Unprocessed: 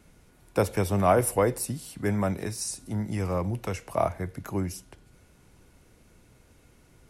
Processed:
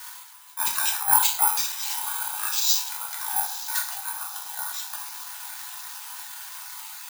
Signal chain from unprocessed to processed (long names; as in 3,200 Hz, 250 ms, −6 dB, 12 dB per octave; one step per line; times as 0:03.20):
time-frequency cells dropped at random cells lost 23%
Butterworth high-pass 1,200 Hz 72 dB per octave
reversed playback
upward compression, threshold −44 dBFS
reversed playback
volume swells 112 ms
on a send: feedback delay with all-pass diffusion 931 ms, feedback 56%, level −12 dB
on the sum: sine wavefolder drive 3 dB, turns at −20.5 dBFS
pitch shifter −6.5 semitones
rectangular room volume 120 cubic metres, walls mixed, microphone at 0.99 metres
bad sample-rate conversion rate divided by 4×, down none, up zero stuff
level +1 dB